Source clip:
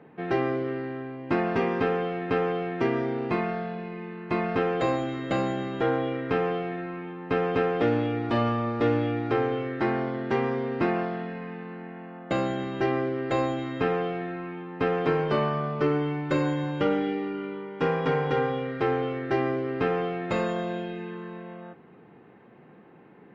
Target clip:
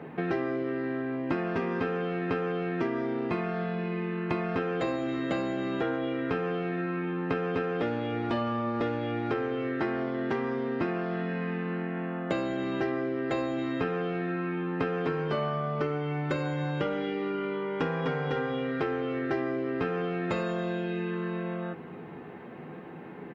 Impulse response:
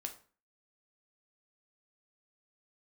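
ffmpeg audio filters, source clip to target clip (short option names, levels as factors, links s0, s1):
-filter_complex "[0:a]highpass=46,asplit=2[s0][s1];[s1]adelay=12,volume=0.422[s2];[s0][s2]amix=inputs=2:normalize=0,acompressor=threshold=0.0141:ratio=5,volume=2.66"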